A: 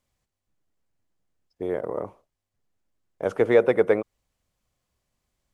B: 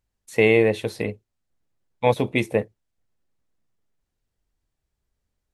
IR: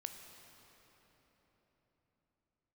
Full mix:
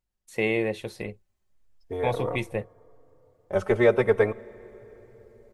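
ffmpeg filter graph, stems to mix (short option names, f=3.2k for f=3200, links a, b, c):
-filter_complex "[0:a]asplit=2[a][b];[b]adelay=3.7,afreqshift=0.43[c];[a][c]amix=inputs=2:normalize=1,adelay=300,volume=2.5dB,asplit=2[d][e];[e]volume=-10dB[f];[1:a]volume=-7dB[g];[2:a]atrim=start_sample=2205[h];[f][h]afir=irnorm=-1:irlink=0[i];[d][g][i]amix=inputs=3:normalize=0,aecho=1:1:5.5:0.32,asubboost=boost=8:cutoff=85"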